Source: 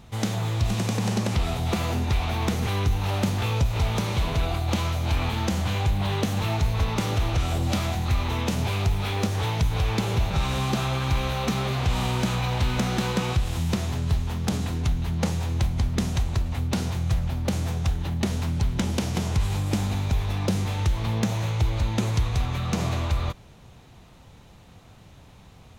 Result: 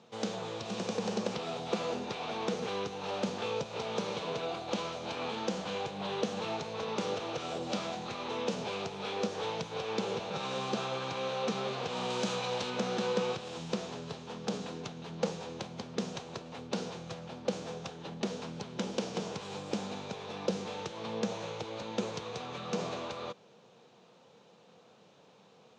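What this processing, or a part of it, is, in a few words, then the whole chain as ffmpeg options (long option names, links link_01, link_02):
television speaker: -filter_complex "[0:a]highpass=frequency=190:width=0.5412,highpass=frequency=190:width=1.3066,equalizer=frequency=280:width_type=q:width=4:gain=-6,equalizer=frequency=480:width_type=q:width=4:gain=10,equalizer=frequency=2000:width_type=q:width=4:gain=-6,lowpass=frequency=6600:width=0.5412,lowpass=frequency=6600:width=1.3066,asettb=1/sr,asplit=3[link_01][link_02][link_03];[link_01]atrim=end=12.104[link_04];[link_02]atrim=start=12.1:end=12.7,asetpts=PTS-STARTPTS,afade=type=in:duration=0.004:curve=qsin,afade=type=out:start_time=0.596:duration=0.004:curve=qsin,highshelf=frequency=4900:gain=9[link_05];[link_03]atrim=start=12.696[link_06];[link_04][link_05]acrossfade=duration=0.004:curve1=hsin:curve2=qsin[link_07];[link_07][link_06]acrossfade=duration=0.004:curve1=qsin:curve2=hsin,volume=-6.5dB"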